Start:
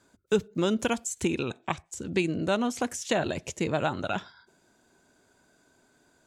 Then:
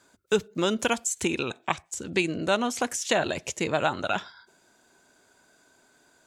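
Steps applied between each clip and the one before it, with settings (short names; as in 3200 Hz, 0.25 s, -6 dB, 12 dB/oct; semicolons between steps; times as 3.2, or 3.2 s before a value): low shelf 390 Hz -9 dB; gain +5 dB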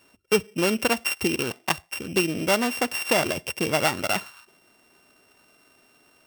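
sample sorter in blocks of 16 samples; gain +2.5 dB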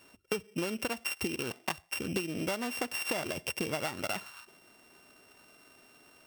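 compressor 12:1, threshold -30 dBFS, peak gain reduction 16 dB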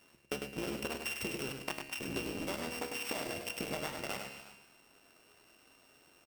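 cycle switcher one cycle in 3, muted; resonator 69 Hz, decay 1.1 s, harmonics all, mix 70%; tapped delay 0.101/0.213/0.361 s -5.5/-15.5/-17 dB; gain +4.5 dB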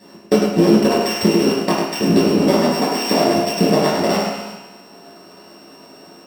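reverb RT60 0.65 s, pre-delay 3 ms, DRR -5.5 dB; gain +5.5 dB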